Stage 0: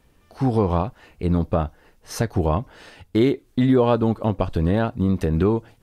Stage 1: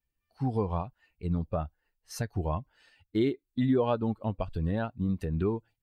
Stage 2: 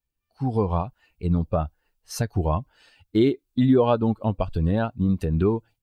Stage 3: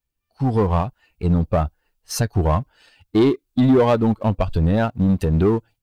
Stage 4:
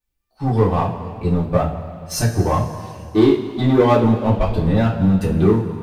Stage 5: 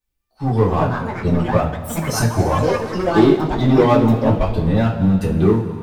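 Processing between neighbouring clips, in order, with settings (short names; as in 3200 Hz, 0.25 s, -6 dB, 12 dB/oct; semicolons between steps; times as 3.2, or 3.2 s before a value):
per-bin expansion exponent 1.5; gain -7 dB
bell 1900 Hz -5.5 dB 0.38 oct; AGC gain up to 7.5 dB
sample leveller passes 1; in parallel at -3.5 dB: soft clip -26 dBFS, distortion -6 dB
two-slope reverb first 0.29 s, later 2.6 s, from -17 dB, DRR -6.5 dB; gain -4.5 dB
echoes that change speed 0.395 s, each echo +6 st, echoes 3, each echo -6 dB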